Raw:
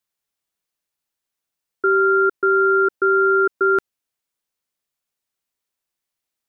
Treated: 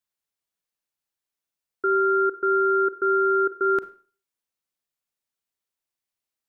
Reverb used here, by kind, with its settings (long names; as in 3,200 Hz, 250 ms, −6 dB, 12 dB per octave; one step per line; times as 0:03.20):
four-comb reverb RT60 0.41 s, combs from 33 ms, DRR 13.5 dB
level −5.5 dB